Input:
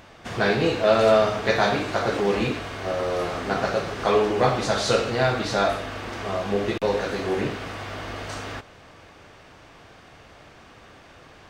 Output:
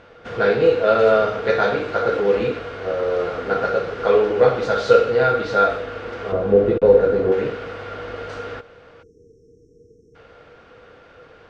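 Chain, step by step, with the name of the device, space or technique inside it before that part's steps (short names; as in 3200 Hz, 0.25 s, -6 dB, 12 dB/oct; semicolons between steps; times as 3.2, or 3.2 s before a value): 6.32–7.32 tilt shelf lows +8.5 dB; 9.03–10.15 spectral delete 490–5300 Hz; inside a cardboard box (LPF 4200 Hz 12 dB/oct; small resonant body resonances 480/1400 Hz, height 16 dB, ringing for 60 ms); gain -2.5 dB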